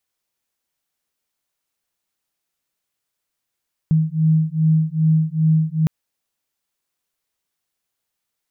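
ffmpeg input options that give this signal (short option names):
-f lavfi -i "aevalsrc='0.141*(sin(2*PI*157*t)+sin(2*PI*159.5*t))':d=1.96:s=44100"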